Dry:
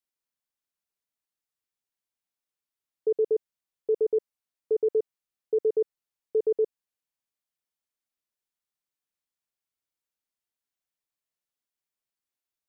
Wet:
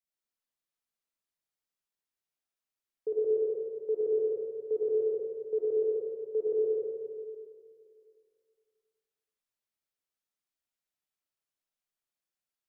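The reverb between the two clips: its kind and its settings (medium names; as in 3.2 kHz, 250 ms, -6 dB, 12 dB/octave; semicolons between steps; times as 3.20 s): algorithmic reverb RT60 2.3 s, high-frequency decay 0.85×, pre-delay 20 ms, DRR -5 dB; trim -7.5 dB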